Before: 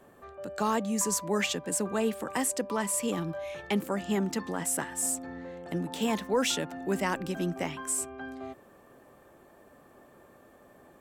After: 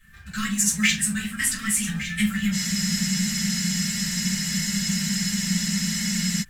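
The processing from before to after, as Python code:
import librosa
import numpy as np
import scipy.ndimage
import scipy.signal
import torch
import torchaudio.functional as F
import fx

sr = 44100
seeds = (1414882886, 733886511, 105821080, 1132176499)

p1 = scipy.signal.sosfilt(scipy.signal.ellip(3, 1.0, 40, [170.0, 1700.0], 'bandstop', fs=sr, output='sos'), x)
p2 = fx.high_shelf(p1, sr, hz=3200.0, db=-4.0)
p3 = p2 + 0.48 * np.pad(p2, (int(3.8 * sr / 1000.0), 0))[:len(p2)]
p4 = fx.quant_companded(p3, sr, bits=4)
p5 = p3 + (p4 * librosa.db_to_amplitude(-11.5))
p6 = fx.wow_flutter(p5, sr, seeds[0], rate_hz=2.1, depth_cents=27.0)
p7 = fx.stretch_grains(p6, sr, factor=0.59, grain_ms=71.0)
p8 = p7 + fx.echo_single(p7, sr, ms=1161, db=-12.5, dry=0)
p9 = fx.room_shoebox(p8, sr, seeds[1], volume_m3=160.0, walls='furnished', distance_m=4.0)
p10 = fx.spec_freeze(p9, sr, seeds[2], at_s=2.55, hold_s=3.86)
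y = p10 * librosa.db_to_amplitude(4.0)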